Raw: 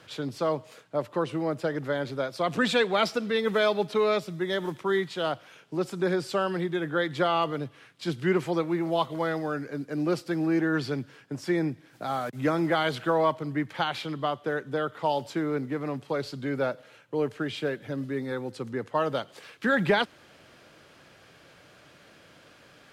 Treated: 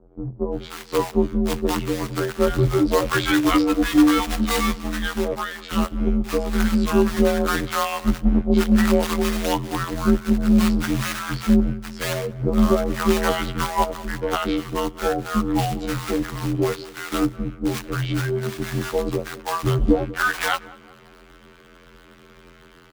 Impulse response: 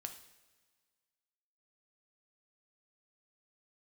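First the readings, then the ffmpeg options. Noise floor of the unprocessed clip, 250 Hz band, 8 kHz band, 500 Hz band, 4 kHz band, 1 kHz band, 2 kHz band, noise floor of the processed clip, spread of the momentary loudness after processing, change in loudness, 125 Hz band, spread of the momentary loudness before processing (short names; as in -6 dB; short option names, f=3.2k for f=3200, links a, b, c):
-56 dBFS, +10.0 dB, +15.5 dB, +3.5 dB, +5.5 dB, +4.5 dB, +4.0 dB, -49 dBFS, 9 LU, +6.5 dB, +9.0 dB, 9 LU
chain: -filter_complex "[0:a]lowpass=f=1.8k:p=1,afftfilt=real='hypot(re,im)*cos(PI*b)':imag='0':win_size=2048:overlap=0.75,acrossover=split=880[a][b];[a]acrusher=bits=2:mode=log:mix=0:aa=0.000001[c];[c][b]amix=inputs=2:normalize=0,afreqshift=-130,bandreject=f=60:t=h:w=6,bandreject=f=120:t=h:w=6,bandreject=f=180:t=h:w=6,acrossover=split=690[d][e];[e]adelay=530[f];[d][f]amix=inputs=2:normalize=0,dynaudnorm=f=110:g=11:m=4dB,asplit=2[g][h];[h]adelay=191,lowpass=f=1.2k:p=1,volume=-18dB,asplit=2[i][j];[j]adelay=191,lowpass=f=1.2k:p=1,volume=0.55,asplit=2[k][l];[l]adelay=191,lowpass=f=1.2k:p=1,volume=0.55,asplit=2[m][n];[n]adelay=191,lowpass=f=1.2k:p=1,volume=0.55,asplit=2[o][p];[p]adelay=191,lowpass=f=1.2k:p=1,volume=0.55[q];[i][k][m][o][q]amix=inputs=5:normalize=0[r];[g][r]amix=inputs=2:normalize=0,volume=7.5dB"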